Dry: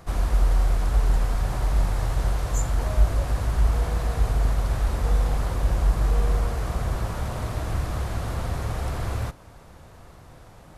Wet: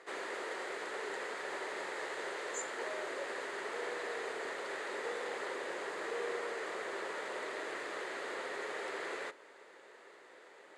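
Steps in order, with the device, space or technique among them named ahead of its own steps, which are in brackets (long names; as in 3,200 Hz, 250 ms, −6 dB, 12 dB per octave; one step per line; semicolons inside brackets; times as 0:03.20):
phone speaker on a table (loudspeaker in its box 390–7,800 Hz, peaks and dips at 400 Hz +7 dB, 720 Hz −8 dB, 1,100 Hz −4 dB, 1,900 Hz +9 dB, 5,600 Hz −10 dB)
level −4 dB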